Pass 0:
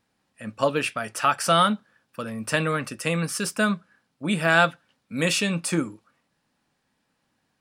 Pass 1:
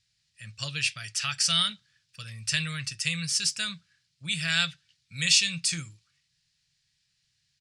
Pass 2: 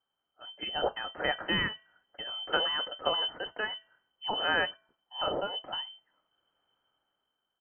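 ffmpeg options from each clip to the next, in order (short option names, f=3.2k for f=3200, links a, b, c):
-af "firequalizer=gain_entry='entry(140,0);entry(230,-27);entry(910,-24);entry(1900,-3);entry(4500,9);entry(7100,6);entry(13000,-15)':delay=0.05:min_phase=1"
-af "bandreject=f=423.6:t=h:w=4,bandreject=f=847.2:t=h:w=4,bandreject=f=1.2708k:t=h:w=4,bandreject=f=1.6944k:t=h:w=4,bandreject=f=2.118k:t=h:w=4,bandreject=f=2.5416k:t=h:w=4,dynaudnorm=f=130:g=11:m=9dB,lowpass=f=2.7k:t=q:w=0.5098,lowpass=f=2.7k:t=q:w=0.6013,lowpass=f=2.7k:t=q:w=0.9,lowpass=f=2.7k:t=q:w=2.563,afreqshift=-3200,volume=-4.5dB"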